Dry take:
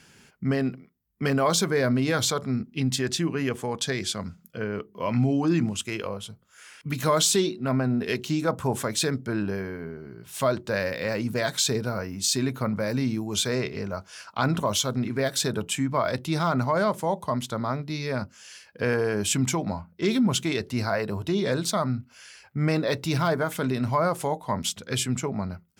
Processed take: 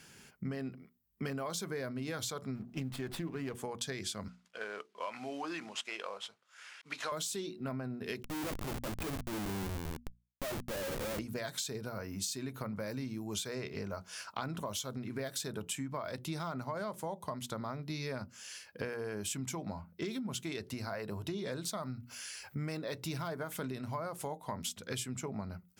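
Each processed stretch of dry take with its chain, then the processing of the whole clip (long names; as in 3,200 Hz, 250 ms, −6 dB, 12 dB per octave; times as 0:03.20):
0:02.55–0:03.55: mu-law and A-law mismatch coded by mu + high-shelf EQ 4,300 Hz −11 dB + windowed peak hold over 5 samples
0:04.28–0:07.12: variable-slope delta modulation 64 kbit/s + band-pass filter 690–4,800 Hz
0:08.23–0:11.19: loudspeaker in its box 140–2,300 Hz, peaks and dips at 170 Hz −6 dB, 440 Hz −8 dB, 940 Hz −8 dB, 1,800 Hz −10 dB + mains-hum notches 50/100/150/200/250/300 Hz + comparator with hysteresis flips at −36.5 dBFS
0:21.83–0:22.77: high-shelf EQ 4,400 Hz +7 dB + upward compression, threshold −39 dBFS
whole clip: high-shelf EQ 10,000 Hz +8 dB; downward compressor 12 to 1, threshold −32 dBFS; mains-hum notches 60/120/180/240 Hz; level −3 dB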